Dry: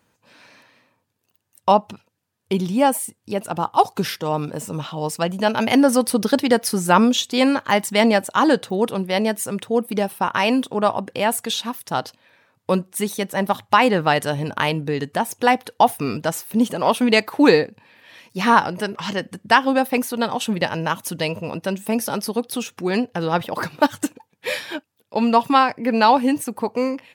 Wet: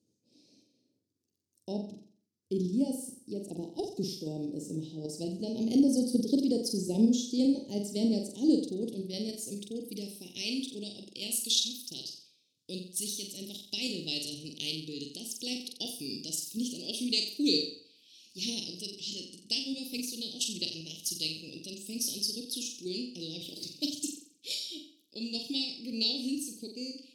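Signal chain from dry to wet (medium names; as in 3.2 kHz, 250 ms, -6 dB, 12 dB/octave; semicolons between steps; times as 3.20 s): band-pass sweep 1.1 kHz -> 2.8 kHz, 7.97–10.76 s; in parallel at +3 dB: level held to a coarse grid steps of 15 dB; on the sum: elliptic band-stop 330–5000 Hz, stop band 80 dB; flutter echo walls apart 7.6 m, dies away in 0.5 s; trim +7.5 dB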